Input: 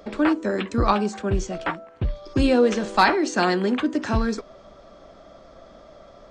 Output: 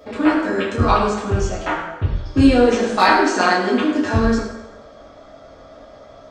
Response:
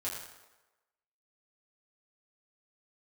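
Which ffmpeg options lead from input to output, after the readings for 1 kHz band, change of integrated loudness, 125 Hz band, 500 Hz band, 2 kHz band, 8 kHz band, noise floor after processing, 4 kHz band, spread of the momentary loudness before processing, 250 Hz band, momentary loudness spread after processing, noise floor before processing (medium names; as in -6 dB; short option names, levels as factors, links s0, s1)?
+5.5 dB, +5.0 dB, +6.0 dB, +4.5 dB, +5.5 dB, +4.5 dB, -44 dBFS, +4.5 dB, 11 LU, +5.0 dB, 10 LU, -49 dBFS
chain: -filter_complex "[1:a]atrim=start_sample=2205[s0];[0:a][s0]afir=irnorm=-1:irlink=0,volume=1.41"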